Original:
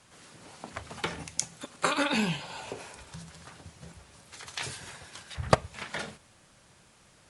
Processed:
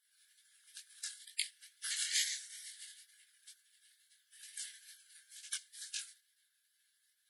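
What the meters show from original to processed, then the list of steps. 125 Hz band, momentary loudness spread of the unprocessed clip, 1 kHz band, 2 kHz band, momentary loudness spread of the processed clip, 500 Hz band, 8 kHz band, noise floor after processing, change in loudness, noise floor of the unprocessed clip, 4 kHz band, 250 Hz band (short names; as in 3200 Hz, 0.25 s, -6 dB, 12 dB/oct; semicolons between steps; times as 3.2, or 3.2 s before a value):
under -40 dB, 22 LU, -36.0 dB, -11.5 dB, 24 LU, under -40 dB, -1.5 dB, -78 dBFS, -7.5 dB, -60 dBFS, -3.5 dB, under -40 dB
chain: rippled Chebyshev high-pass 1800 Hz, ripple 9 dB; spectral gate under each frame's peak -20 dB weak; chorus 2.2 Hz, delay 18.5 ms, depth 6.6 ms; gain +16.5 dB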